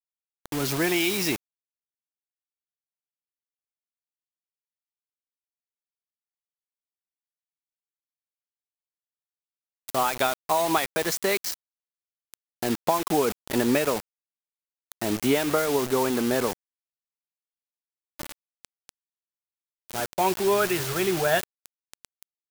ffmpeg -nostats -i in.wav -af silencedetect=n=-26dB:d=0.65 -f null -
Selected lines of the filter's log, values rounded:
silence_start: 1.36
silence_end: 9.88 | silence_duration: 8.52
silence_start: 11.54
silence_end: 12.34 | silence_duration: 0.80
silence_start: 14.00
silence_end: 14.92 | silence_duration: 0.92
silence_start: 16.53
silence_end: 18.19 | silence_duration: 1.66
silence_start: 18.89
silence_end: 19.90 | silence_duration: 1.00